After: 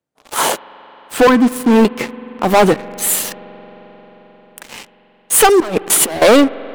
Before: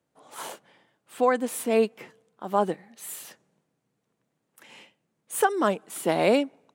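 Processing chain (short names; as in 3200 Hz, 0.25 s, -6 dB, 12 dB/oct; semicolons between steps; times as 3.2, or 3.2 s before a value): 1.27–1.85 EQ curve 340 Hz 0 dB, 700 Hz -23 dB, 1000 Hz -5 dB, 4600 Hz -14 dB; sample leveller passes 5; 5.6–6.22 negative-ratio compressor -20 dBFS, ratio -0.5; reverb RT60 5.8 s, pre-delay 44 ms, DRR 17 dB; gain +4.5 dB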